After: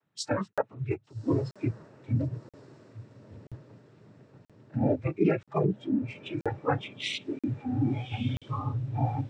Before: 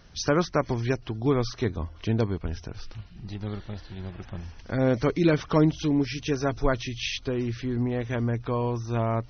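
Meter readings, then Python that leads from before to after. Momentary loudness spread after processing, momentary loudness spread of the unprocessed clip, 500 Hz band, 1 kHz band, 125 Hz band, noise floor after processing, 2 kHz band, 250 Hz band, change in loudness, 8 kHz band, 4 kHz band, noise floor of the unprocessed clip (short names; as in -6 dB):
20 LU, 16 LU, -5.5 dB, -3.5 dB, -3.0 dB, -67 dBFS, -6.0 dB, -4.5 dB, -4.0 dB, n/a, -4.5 dB, -47 dBFS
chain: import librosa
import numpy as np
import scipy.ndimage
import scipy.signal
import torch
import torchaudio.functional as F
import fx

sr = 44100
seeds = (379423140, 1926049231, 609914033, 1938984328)

p1 = fx.wiener(x, sr, points=9)
p2 = fx.noise_vocoder(p1, sr, seeds[0], bands=12)
p3 = fx.rider(p2, sr, range_db=5, speed_s=2.0)
p4 = p3 + fx.echo_diffused(p3, sr, ms=1173, feedback_pct=50, wet_db=-6.0, dry=0)
p5 = fx.noise_reduce_blind(p4, sr, reduce_db=18)
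p6 = fx.buffer_crackle(p5, sr, first_s=0.53, period_s=0.98, block=2048, kind='zero')
y = p6 * 10.0 ** (-2.0 / 20.0)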